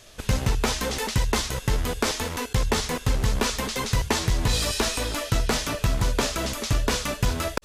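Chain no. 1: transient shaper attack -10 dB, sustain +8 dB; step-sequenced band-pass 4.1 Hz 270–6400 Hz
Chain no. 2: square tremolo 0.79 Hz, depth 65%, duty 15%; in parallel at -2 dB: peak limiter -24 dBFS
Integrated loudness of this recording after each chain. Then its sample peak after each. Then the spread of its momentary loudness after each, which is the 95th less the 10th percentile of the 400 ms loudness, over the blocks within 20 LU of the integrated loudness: -37.0 LUFS, -28.0 LUFS; -18.0 dBFS, -10.5 dBFS; 8 LU, 6 LU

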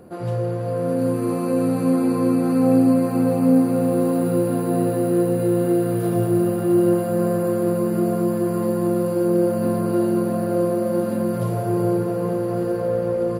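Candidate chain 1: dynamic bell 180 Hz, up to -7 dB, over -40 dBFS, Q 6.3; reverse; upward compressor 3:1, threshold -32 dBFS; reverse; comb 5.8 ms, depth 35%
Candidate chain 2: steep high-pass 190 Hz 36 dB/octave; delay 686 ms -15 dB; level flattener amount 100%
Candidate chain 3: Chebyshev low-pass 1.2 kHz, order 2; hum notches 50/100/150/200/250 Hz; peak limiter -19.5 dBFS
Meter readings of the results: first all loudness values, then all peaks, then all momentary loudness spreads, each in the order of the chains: -20.0 LUFS, -14.0 LUFS, -27.0 LUFS; -7.0 dBFS, -2.5 dBFS, -19.5 dBFS; 4 LU, 0 LU, 1 LU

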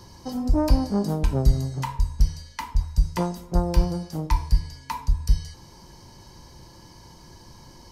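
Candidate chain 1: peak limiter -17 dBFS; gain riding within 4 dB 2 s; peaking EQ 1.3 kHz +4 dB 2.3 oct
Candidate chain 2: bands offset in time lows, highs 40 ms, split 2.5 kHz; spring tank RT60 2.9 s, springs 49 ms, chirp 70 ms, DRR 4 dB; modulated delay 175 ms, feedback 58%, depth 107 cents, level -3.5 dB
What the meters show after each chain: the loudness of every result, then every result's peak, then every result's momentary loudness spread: -28.5 LUFS, -22.5 LUFS; -13.5 dBFS, -4.0 dBFS; 19 LU, 11 LU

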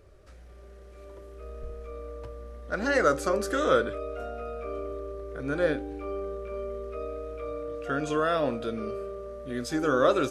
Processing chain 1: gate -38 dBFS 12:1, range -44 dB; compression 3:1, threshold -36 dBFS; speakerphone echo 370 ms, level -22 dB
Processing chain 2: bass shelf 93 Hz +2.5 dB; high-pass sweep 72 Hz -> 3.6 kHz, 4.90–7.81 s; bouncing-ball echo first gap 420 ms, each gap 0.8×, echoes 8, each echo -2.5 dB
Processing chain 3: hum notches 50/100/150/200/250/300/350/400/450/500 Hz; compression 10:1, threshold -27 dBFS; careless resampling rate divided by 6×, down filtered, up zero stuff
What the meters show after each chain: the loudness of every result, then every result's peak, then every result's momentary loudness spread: -38.5 LUFS, -27.5 LUFS, -23.5 LUFS; -22.5 dBFS, -8.5 dBFS, -2.5 dBFS; 10 LU, 17 LU, 15 LU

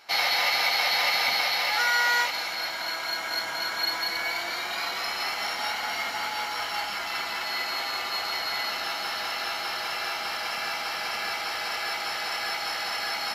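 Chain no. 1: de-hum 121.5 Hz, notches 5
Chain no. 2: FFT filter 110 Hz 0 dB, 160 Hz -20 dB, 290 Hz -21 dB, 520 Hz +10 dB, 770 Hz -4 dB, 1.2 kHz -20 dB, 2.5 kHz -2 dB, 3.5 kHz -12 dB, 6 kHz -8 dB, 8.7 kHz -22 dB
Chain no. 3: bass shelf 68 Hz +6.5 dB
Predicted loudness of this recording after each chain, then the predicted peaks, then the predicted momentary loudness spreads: -26.5 LUFS, -34.0 LUFS, -26.5 LUFS; -11.5 dBFS, -18.0 dBFS, -12.0 dBFS; 7 LU, 8 LU, 7 LU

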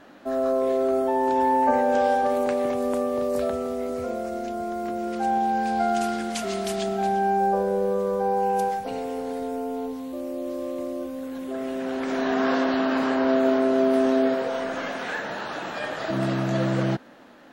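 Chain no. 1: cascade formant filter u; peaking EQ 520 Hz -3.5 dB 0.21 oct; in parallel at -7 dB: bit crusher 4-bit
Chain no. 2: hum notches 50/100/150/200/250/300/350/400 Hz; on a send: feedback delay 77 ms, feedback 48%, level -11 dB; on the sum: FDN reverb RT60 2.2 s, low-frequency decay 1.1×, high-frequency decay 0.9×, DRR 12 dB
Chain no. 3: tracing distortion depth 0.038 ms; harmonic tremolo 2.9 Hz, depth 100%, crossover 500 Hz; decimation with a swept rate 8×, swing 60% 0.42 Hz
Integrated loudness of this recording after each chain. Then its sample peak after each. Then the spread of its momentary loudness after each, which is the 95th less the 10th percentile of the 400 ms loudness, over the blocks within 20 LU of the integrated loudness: -34.0 LUFS, -24.5 LUFS, -30.0 LUFS; -15.5 dBFS, -8.0 dBFS, -14.5 dBFS; 14 LU, 12 LU, 10 LU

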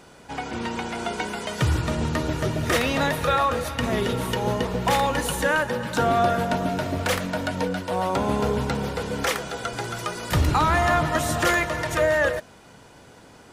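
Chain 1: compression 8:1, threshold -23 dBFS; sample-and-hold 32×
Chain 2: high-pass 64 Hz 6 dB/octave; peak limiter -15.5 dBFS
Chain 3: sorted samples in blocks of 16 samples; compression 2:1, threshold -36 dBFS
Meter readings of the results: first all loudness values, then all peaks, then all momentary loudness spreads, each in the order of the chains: -28.5 LUFS, -26.0 LUFS, -32.0 LUFS; -15.0 dBFS, -15.5 dBFS, -18.5 dBFS; 4 LU, 6 LU, 5 LU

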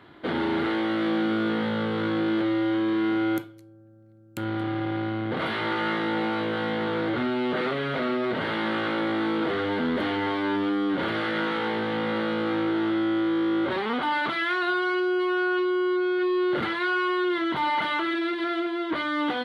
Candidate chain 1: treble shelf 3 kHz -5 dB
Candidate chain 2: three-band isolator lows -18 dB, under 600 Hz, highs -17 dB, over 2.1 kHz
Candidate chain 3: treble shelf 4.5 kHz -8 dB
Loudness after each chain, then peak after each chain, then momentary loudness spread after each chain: -26.5 LUFS, -32.5 LUFS, -26.5 LUFS; -16.0 dBFS, -19.5 dBFS, -16.0 dBFS; 4 LU, 7 LU, 4 LU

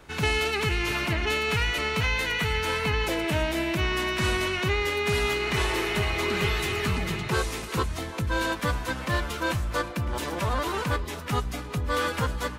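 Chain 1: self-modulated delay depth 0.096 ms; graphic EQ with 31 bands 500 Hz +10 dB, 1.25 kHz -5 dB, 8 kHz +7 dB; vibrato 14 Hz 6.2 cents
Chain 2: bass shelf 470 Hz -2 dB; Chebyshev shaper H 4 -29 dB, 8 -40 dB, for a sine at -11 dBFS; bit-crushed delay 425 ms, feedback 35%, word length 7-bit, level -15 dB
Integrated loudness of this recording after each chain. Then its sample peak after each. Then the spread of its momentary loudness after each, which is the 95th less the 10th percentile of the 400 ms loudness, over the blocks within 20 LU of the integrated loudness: -26.0 LUFS, -27.0 LUFS; -10.5 dBFS, -11.0 dBFS; 4 LU, 5 LU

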